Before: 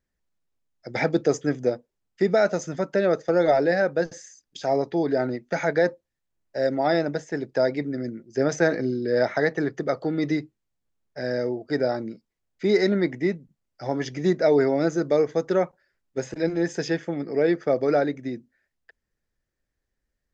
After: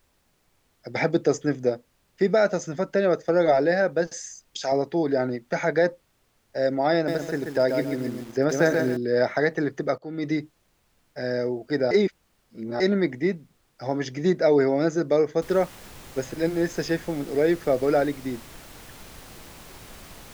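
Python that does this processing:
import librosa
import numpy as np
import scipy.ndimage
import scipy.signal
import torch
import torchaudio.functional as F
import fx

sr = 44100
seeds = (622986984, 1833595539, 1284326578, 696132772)

y = fx.tilt_eq(x, sr, slope=3.0, at=(4.07, 4.72))
y = fx.echo_crushed(y, sr, ms=136, feedback_pct=35, bits=7, wet_db=-5.0, at=(6.94, 8.97))
y = fx.noise_floor_step(y, sr, seeds[0], at_s=15.42, before_db=-67, after_db=-44, tilt_db=3.0)
y = fx.edit(y, sr, fx.fade_in_from(start_s=9.98, length_s=0.4, floor_db=-18.5),
    fx.reverse_span(start_s=11.91, length_s=0.89), tone=tone)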